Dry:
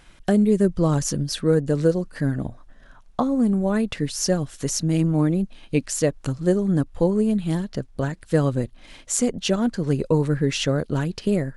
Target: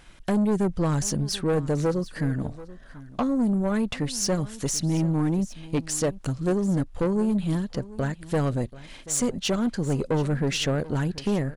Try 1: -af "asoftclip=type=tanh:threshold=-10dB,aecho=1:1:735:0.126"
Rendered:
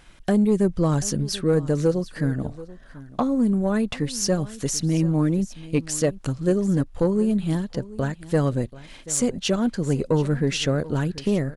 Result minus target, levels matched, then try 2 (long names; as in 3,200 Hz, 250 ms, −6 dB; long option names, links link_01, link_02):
soft clipping: distortion −10 dB
-af "asoftclip=type=tanh:threshold=-18.5dB,aecho=1:1:735:0.126"